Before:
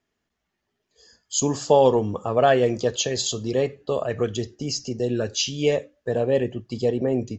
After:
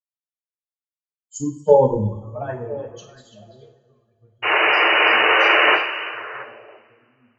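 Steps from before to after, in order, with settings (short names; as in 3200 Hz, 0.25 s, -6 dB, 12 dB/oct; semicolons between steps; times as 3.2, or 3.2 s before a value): per-bin expansion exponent 3; Doppler pass-by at 1.88, 7 m/s, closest 3.2 m; low shelf 370 Hz +9.5 dB; painted sound noise, 4.42–5.76, 310–3000 Hz -17 dBFS; delay with a stepping band-pass 0.336 s, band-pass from 3500 Hz, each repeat -1.4 oct, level -4 dB; two-slope reverb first 0.53 s, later 4.1 s, from -18 dB, DRR 0 dB; three-band expander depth 70%; gain -2 dB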